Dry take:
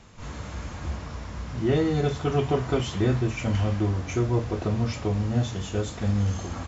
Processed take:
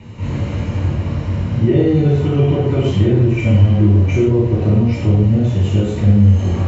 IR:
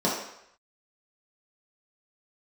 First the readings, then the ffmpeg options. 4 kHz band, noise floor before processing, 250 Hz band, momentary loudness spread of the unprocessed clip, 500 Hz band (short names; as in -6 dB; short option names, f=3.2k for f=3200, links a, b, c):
+4.0 dB, -38 dBFS, +12.0 dB, 12 LU, +9.0 dB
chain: -filter_complex "[0:a]acompressor=threshold=-33dB:ratio=2[a];[1:a]atrim=start_sample=2205,atrim=end_sample=3528,asetrate=22932,aresample=44100[b];[a][b]afir=irnorm=-1:irlink=0,volume=-5dB"